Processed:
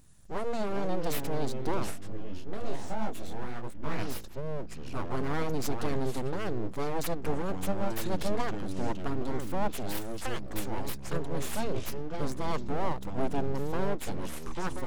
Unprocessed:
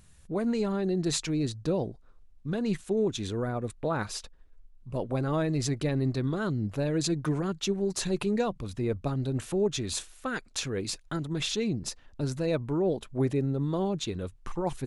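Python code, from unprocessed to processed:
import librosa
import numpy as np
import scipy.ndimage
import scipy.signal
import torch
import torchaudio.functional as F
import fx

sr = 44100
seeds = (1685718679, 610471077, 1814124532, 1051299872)

y = fx.peak_eq(x, sr, hz=2500.0, db=-7.0, octaves=1.3)
y = np.abs(y)
y = fx.echo_pitch(y, sr, ms=261, semitones=-6, count=3, db_per_echo=-6.0)
y = fx.detune_double(y, sr, cents=fx.line((1.9, 33.0), (3.97, 46.0)), at=(1.9, 3.97), fade=0.02)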